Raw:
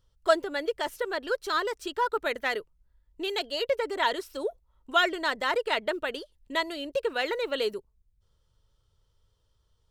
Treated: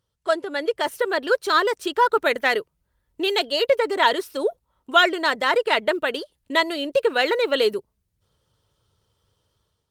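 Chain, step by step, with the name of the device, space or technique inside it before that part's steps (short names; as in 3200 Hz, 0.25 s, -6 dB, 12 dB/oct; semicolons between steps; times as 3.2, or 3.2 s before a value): video call (HPF 110 Hz 12 dB/oct; AGC gain up to 9 dB; Opus 32 kbps 48000 Hz)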